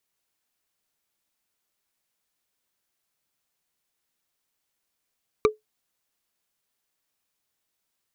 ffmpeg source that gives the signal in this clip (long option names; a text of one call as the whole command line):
ffmpeg -f lavfi -i "aevalsrc='0.282*pow(10,-3*t/0.15)*sin(2*PI*429*t)+0.178*pow(10,-3*t/0.044)*sin(2*PI*1182.8*t)+0.112*pow(10,-3*t/0.02)*sin(2*PI*2318.3*t)+0.0708*pow(10,-3*t/0.011)*sin(2*PI*3832.3*t)+0.0447*pow(10,-3*t/0.007)*sin(2*PI*5722.9*t)':duration=0.45:sample_rate=44100" out.wav